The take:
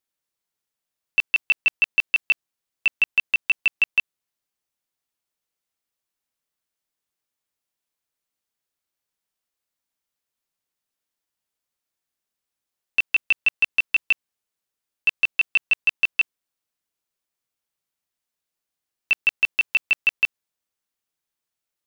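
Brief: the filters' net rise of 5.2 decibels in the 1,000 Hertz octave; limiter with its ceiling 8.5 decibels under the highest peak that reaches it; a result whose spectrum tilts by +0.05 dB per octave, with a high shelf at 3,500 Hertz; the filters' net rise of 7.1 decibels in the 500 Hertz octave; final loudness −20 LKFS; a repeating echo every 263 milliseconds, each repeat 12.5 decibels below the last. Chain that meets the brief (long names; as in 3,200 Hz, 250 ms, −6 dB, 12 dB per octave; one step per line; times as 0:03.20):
parametric band 500 Hz +7.5 dB
parametric band 1,000 Hz +4 dB
high-shelf EQ 3,500 Hz +5.5 dB
brickwall limiter −16.5 dBFS
repeating echo 263 ms, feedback 24%, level −12.5 dB
level +6 dB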